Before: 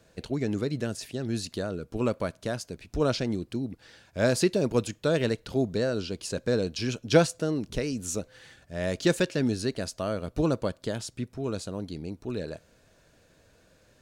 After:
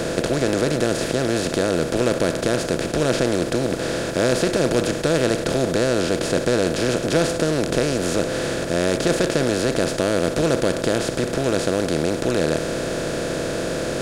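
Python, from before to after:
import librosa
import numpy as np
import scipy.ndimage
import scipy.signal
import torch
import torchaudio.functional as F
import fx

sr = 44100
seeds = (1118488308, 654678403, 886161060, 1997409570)

y = fx.bin_compress(x, sr, power=0.2)
y = F.gain(torch.from_numpy(y), -3.0).numpy()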